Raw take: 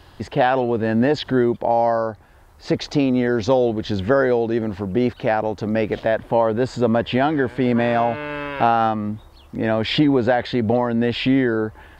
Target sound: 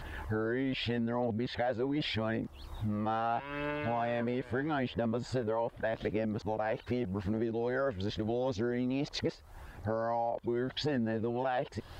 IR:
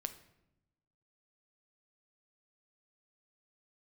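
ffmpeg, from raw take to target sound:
-af "areverse,aphaser=in_gain=1:out_gain=1:delay=2.3:decay=0.31:speed=0.81:type=triangular,acompressor=threshold=-31dB:ratio=6"

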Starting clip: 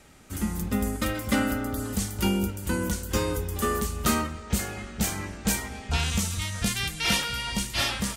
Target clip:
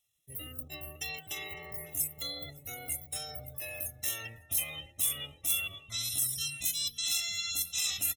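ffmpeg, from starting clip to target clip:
-filter_complex "[0:a]afftdn=nr=31:nf=-36,lowshelf=f=350:g=-5,aecho=1:1:2.2:0.61,areverse,acompressor=threshold=-36dB:ratio=10,areverse,asetrate=64194,aresample=44100,atempo=0.686977,aexciter=amount=7.3:drive=4.1:freq=2.4k,asuperstop=centerf=4600:order=20:qfactor=4.4,asplit=2[a][b];[b]adelay=554,lowpass=f=1.3k:p=1,volume=-14dB,asplit=2[c][d];[d]adelay=554,lowpass=f=1.3k:p=1,volume=0.33,asplit=2[e][f];[f]adelay=554,lowpass=f=1.3k:p=1,volume=0.33[g];[c][e][g]amix=inputs=3:normalize=0[h];[a][h]amix=inputs=2:normalize=0,volume=-8dB"

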